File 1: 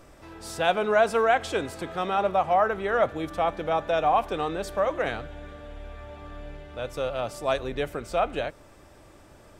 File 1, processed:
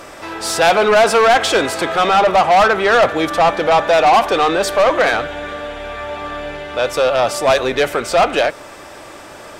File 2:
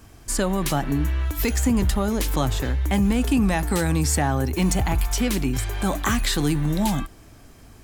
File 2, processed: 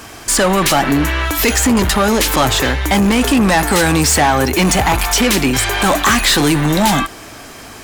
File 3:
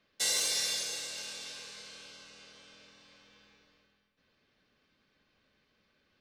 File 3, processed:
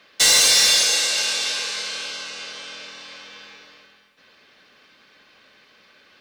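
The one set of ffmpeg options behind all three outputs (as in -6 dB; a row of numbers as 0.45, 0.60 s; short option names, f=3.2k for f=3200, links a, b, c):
-filter_complex "[0:a]aeval=exprs='clip(val(0),-1,0.133)':c=same,asplit=2[a][b];[b]highpass=f=720:p=1,volume=21dB,asoftclip=type=tanh:threshold=-10dB[c];[a][c]amix=inputs=2:normalize=0,lowpass=f=6.9k:p=1,volume=-6dB,volume=6dB"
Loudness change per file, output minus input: +12.0, +10.0, +15.5 LU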